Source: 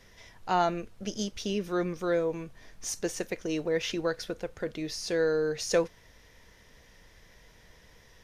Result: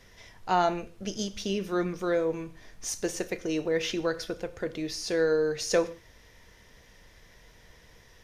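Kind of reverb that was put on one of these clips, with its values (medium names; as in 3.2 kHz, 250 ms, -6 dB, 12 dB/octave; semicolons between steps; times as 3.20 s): gated-style reverb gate 190 ms falling, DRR 12 dB; trim +1 dB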